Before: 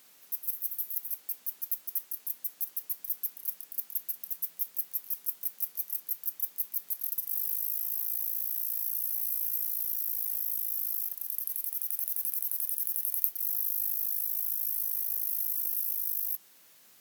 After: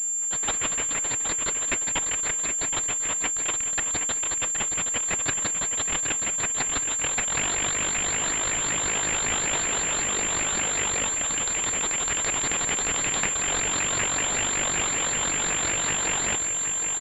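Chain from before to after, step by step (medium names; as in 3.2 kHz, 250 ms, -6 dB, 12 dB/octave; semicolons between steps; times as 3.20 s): sawtooth pitch modulation -3.5 st, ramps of 189 ms; feedback delay 770 ms, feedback 40%, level -7.5 dB; class-D stage that switches slowly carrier 7.3 kHz; trim +5 dB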